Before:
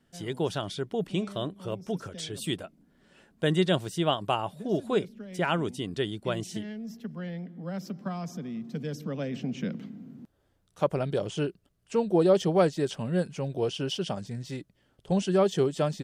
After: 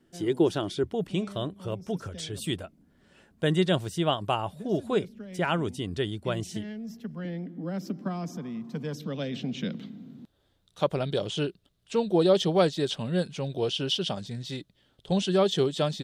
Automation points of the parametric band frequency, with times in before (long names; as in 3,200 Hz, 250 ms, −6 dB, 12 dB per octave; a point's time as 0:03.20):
parametric band +12 dB 0.56 octaves
340 Hz
from 0:00.84 81 Hz
from 0:07.25 300 Hz
from 0:08.37 1,000 Hz
from 0:08.97 3,700 Hz